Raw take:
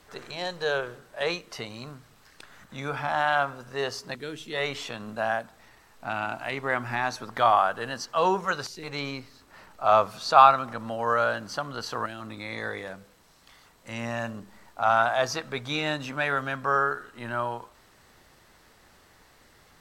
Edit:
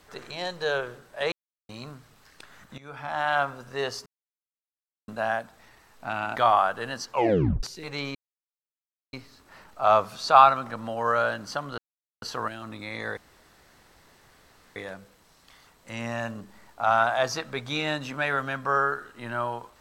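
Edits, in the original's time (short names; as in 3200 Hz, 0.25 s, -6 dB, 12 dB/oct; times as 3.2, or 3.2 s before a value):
1.32–1.69 mute
2.78–3.39 fade in, from -18.5 dB
4.06–5.08 mute
6.36–7.36 cut
8.08 tape stop 0.55 s
9.15 insert silence 0.98 s
11.8 insert silence 0.44 s
12.75 insert room tone 1.59 s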